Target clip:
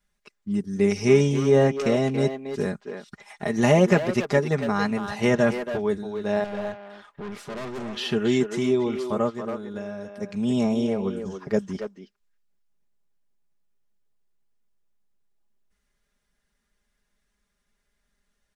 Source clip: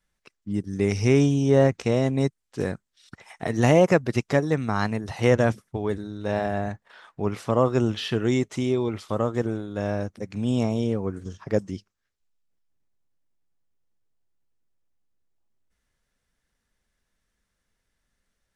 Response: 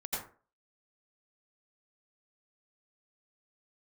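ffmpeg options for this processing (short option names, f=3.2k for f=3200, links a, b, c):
-filter_complex "[0:a]aecho=1:1:4.9:0.7,asettb=1/sr,asplit=3[a][b][c];[a]atrim=end=6.444[d];[b]atrim=start=6.44:end=7.97,asetpts=PTS-STARTPTS,afade=t=in:d=0.004:c=qsin,afade=t=out:st=1.526:d=0.004:c=qsin,aeval=exprs='(tanh(35.5*val(0)+0.5)-tanh(0.5))/35.5':c=same[e];[c]atrim=start=7.966[f];[d][e]acrossfade=d=0.004:c1=hsin:c2=qsin[g];[g][f]acrossfade=d=0.004:c1=qsin:c2=hsin,asplit=3[h][i][j];[h]afade=t=out:st=9.29:d=0.02[k];[i]acompressor=threshold=-29dB:ratio=12,afade=t=in:st=9.29:d=0.02,afade=t=out:st=10.19:d=0.02[l];[j]afade=t=in:st=10.19:d=0.02[m];[k][l][m]amix=inputs=3:normalize=0,asplit=2[n][o];[o]adelay=280,highpass=300,lowpass=3.4k,asoftclip=type=hard:threshold=-18.5dB,volume=-6dB[p];[n][p]amix=inputs=2:normalize=0,volume=-1dB"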